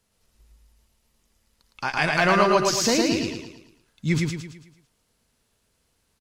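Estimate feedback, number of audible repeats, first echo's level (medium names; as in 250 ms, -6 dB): 44%, 5, -3.0 dB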